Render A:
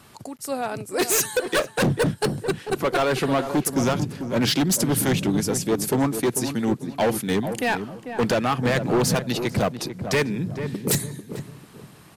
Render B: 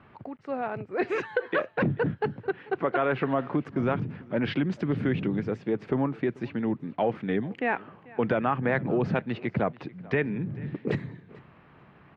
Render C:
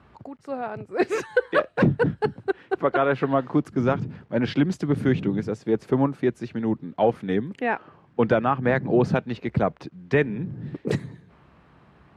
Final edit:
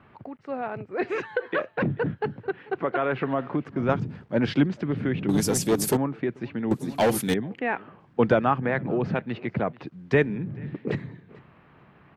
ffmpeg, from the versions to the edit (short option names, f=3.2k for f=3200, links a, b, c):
-filter_complex "[2:a]asplit=3[a][b][c];[0:a]asplit=2[d][e];[1:a]asplit=6[f][g][h][i][j][k];[f]atrim=end=3.892[l];[a]atrim=start=3.888:end=4.672[m];[g]atrim=start=4.668:end=5.292[n];[d]atrim=start=5.288:end=5.972[o];[h]atrim=start=5.968:end=6.712[p];[e]atrim=start=6.708:end=7.342[q];[i]atrim=start=7.338:end=8.002[r];[b]atrim=start=7.998:end=8.602[s];[j]atrim=start=8.598:end=9.872[t];[c]atrim=start=9.868:end=10.372[u];[k]atrim=start=10.368[v];[l][m]acrossfade=d=0.004:c1=hsin:c2=hsin[w];[w][n]acrossfade=d=0.004:c1=hsin:c2=hsin[x];[x][o]acrossfade=d=0.004:c1=hsin:c2=hsin[y];[y][p]acrossfade=d=0.004:c1=hsin:c2=hsin[z];[z][q]acrossfade=d=0.004:c1=hsin:c2=hsin[aa];[aa][r]acrossfade=d=0.004:c1=hsin:c2=hsin[ab];[ab][s]acrossfade=d=0.004:c1=hsin:c2=hsin[ac];[ac][t]acrossfade=d=0.004:c1=hsin:c2=hsin[ad];[ad][u]acrossfade=d=0.004:c1=hsin:c2=hsin[ae];[ae][v]acrossfade=d=0.004:c1=hsin:c2=hsin"